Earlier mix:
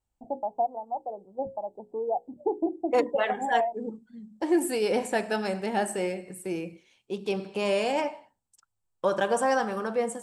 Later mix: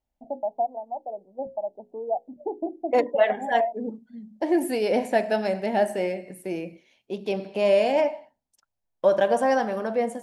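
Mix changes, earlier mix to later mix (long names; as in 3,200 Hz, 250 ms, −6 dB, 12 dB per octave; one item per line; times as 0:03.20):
first voice −4.5 dB
master: add thirty-one-band graphic EQ 100 Hz −7 dB, 250 Hz +6 dB, 630 Hz +11 dB, 1,250 Hz −6 dB, 2,000 Hz +4 dB, 8,000 Hz −12 dB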